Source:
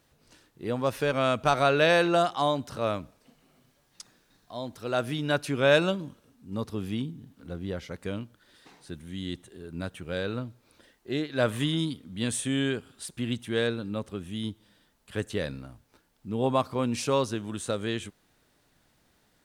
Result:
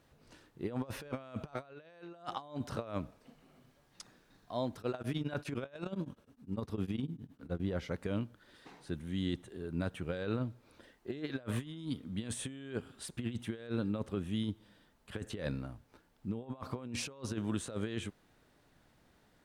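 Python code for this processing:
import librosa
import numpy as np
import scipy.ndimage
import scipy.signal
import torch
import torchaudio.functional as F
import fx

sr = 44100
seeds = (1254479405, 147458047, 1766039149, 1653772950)

y = fx.tremolo_abs(x, sr, hz=9.8, at=(4.78, 7.6))
y = fx.over_compress(y, sr, threshold_db=-33.0, ratio=-0.5)
y = fx.high_shelf(y, sr, hz=3200.0, db=-8.5)
y = y * 10.0 ** (-4.0 / 20.0)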